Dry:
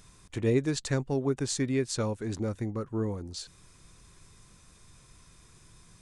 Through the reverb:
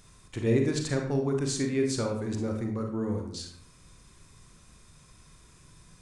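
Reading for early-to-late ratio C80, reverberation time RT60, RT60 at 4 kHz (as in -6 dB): 9.0 dB, 0.65 s, 0.40 s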